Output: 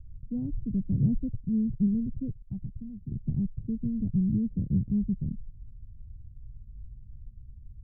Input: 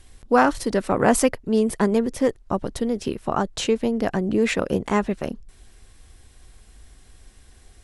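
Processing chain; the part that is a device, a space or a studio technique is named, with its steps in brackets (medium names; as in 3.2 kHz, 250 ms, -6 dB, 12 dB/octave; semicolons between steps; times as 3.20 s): the neighbour's flat through the wall (low-pass 170 Hz 24 dB/octave; peaking EQ 120 Hz +6 dB 0.77 oct); 2.42–3.12 s: resonant low shelf 620 Hz -7.5 dB, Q 3; trim +4 dB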